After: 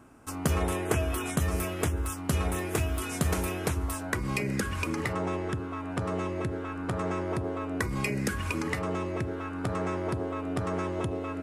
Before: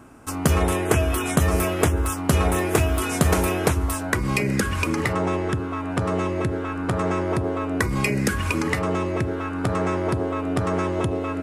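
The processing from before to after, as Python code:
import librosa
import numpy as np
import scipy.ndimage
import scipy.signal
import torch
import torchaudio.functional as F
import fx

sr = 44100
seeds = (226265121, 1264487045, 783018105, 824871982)

y = fx.peak_eq(x, sr, hz=670.0, db=-3.5, octaves=2.4, at=(1.3, 3.73))
y = y * librosa.db_to_amplitude(-7.5)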